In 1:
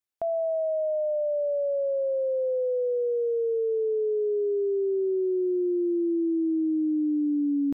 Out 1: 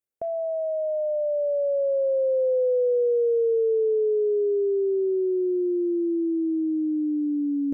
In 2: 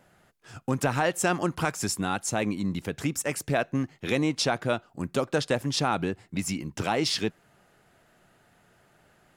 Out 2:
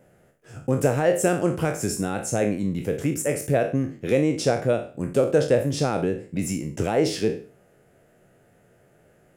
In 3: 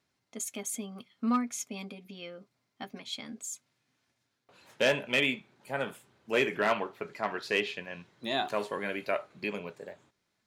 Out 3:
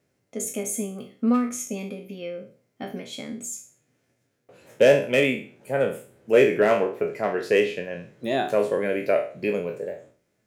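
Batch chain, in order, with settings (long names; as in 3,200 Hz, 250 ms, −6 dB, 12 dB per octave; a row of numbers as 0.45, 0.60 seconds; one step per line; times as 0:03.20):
peak hold with a decay on every bin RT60 0.41 s
octave-band graphic EQ 125/500/1,000/4,000 Hz +4/+9/−9/−10 dB
loudness normalisation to −24 LKFS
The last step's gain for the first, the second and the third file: −2.5, +0.5, +5.5 decibels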